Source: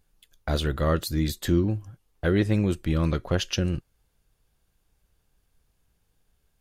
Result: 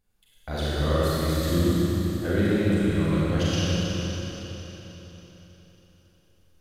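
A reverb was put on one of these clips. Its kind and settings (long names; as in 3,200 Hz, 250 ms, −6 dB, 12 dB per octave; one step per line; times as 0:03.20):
four-comb reverb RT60 4 s, combs from 31 ms, DRR −9.5 dB
level −8 dB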